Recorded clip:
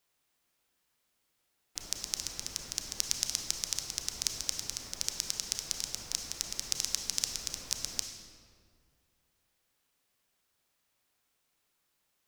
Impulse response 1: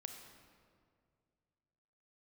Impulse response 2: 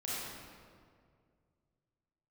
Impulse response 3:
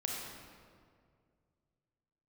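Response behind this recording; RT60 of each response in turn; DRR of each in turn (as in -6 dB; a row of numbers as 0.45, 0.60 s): 1; 2.2, 2.1, 2.1 s; 4.5, -8.5, -2.0 dB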